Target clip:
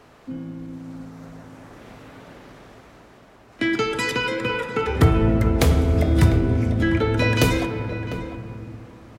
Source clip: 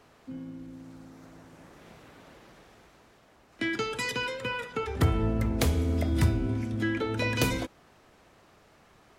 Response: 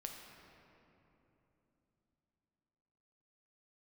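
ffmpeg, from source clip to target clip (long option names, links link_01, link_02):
-filter_complex "[0:a]asplit=2[link_01][link_02];[link_02]adelay=699.7,volume=-11dB,highshelf=frequency=4000:gain=-15.7[link_03];[link_01][link_03]amix=inputs=2:normalize=0,asplit=2[link_04][link_05];[1:a]atrim=start_sample=2205,highshelf=frequency=4100:gain=-11.5[link_06];[link_05][link_06]afir=irnorm=-1:irlink=0,volume=4.5dB[link_07];[link_04][link_07]amix=inputs=2:normalize=0,volume=2.5dB"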